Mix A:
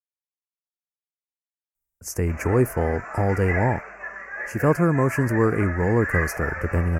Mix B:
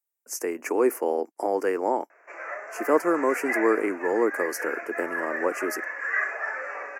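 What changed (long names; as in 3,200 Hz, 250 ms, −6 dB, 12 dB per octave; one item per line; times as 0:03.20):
speech: entry −1.75 s
master: add Butterworth high-pass 290 Hz 36 dB per octave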